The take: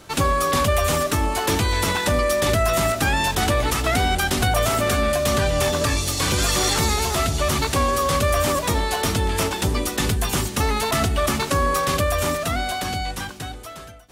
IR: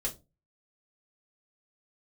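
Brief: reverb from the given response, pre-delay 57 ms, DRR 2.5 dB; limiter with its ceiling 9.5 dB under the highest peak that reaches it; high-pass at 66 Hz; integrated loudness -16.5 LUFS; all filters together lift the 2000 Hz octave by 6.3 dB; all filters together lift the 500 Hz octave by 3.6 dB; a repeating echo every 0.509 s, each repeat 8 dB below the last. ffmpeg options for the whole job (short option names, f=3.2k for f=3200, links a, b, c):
-filter_complex "[0:a]highpass=66,equalizer=f=500:t=o:g=4,equalizer=f=2k:t=o:g=7.5,alimiter=limit=-14.5dB:level=0:latency=1,aecho=1:1:509|1018|1527|2036|2545:0.398|0.159|0.0637|0.0255|0.0102,asplit=2[a][b];[1:a]atrim=start_sample=2205,adelay=57[c];[b][c]afir=irnorm=-1:irlink=0,volume=-5dB[d];[a][d]amix=inputs=2:normalize=0,volume=3dB"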